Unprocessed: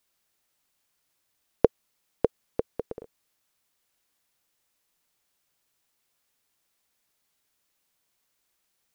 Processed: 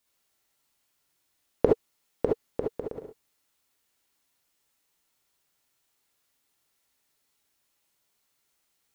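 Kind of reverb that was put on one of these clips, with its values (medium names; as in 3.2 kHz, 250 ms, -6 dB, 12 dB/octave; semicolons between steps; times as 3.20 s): gated-style reverb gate 90 ms rising, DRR -1 dB; trim -2.5 dB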